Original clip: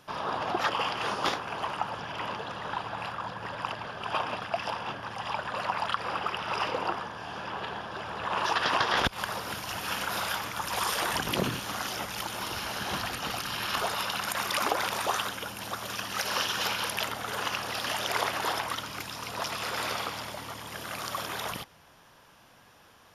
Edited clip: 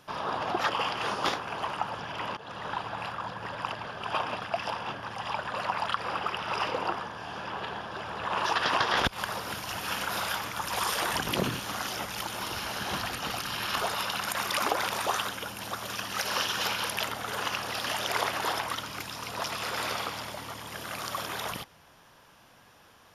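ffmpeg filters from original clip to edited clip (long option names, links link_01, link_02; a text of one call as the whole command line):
ffmpeg -i in.wav -filter_complex "[0:a]asplit=2[link_01][link_02];[link_01]atrim=end=2.37,asetpts=PTS-STARTPTS,afade=type=out:start_time=2.366:duration=0.004:curve=hsin:silence=0.177828[link_03];[link_02]atrim=start=2.37,asetpts=PTS-STARTPTS,afade=type=in:duration=0.33:curve=qsin:silence=0.177828[link_04];[link_03][link_04]concat=n=2:v=0:a=1" out.wav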